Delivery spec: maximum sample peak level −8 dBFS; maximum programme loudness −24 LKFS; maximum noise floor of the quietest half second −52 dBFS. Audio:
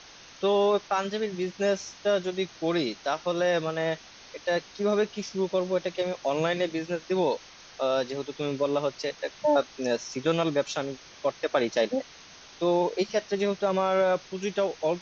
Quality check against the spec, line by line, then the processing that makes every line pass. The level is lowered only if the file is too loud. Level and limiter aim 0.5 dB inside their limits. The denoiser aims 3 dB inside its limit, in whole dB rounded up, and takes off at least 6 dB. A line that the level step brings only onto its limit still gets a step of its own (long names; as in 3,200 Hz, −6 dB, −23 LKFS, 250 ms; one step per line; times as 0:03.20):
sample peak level −11.0 dBFS: in spec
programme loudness −28.0 LKFS: in spec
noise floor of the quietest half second −49 dBFS: out of spec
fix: broadband denoise 6 dB, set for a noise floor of −49 dBFS